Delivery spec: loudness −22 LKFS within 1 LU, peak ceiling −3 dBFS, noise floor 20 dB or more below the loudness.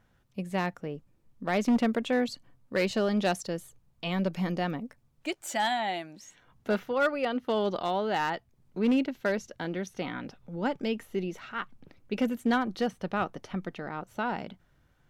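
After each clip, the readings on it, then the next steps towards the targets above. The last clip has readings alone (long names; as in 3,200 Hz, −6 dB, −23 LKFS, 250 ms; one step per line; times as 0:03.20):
share of clipped samples 0.7%; peaks flattened at −19.5 dBFS; integrated loudness −31.0 LKFS; sample peak −19.5 dBFS; target loudness −22.0 LKFS
→ clipped peaks rebuilt −19.5 dBFS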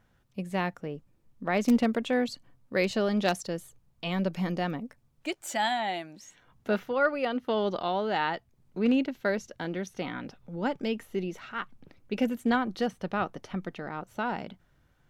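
share of clipped samples 0.0%; integrated loudness −30.5 LKFS; sample peak −10.5 dBFS; target loudness −22.0 LKFS
→ level +8.5 dB
brickwall limiter −3 dBFS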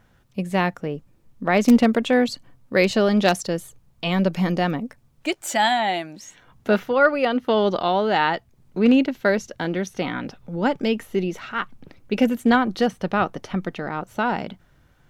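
integrated loudness −22.0 LKFS; sample peak −3.0 dBFS; background noise floor −59 dBFS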